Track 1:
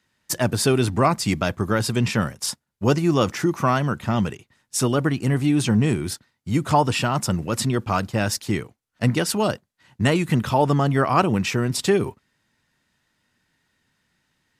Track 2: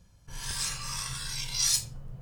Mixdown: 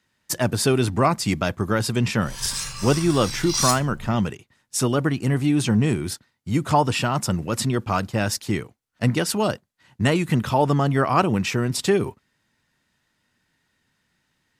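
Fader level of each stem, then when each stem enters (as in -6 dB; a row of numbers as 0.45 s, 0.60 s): -0.5 dB, +3.0 dB; 0.00 s, 1.95 s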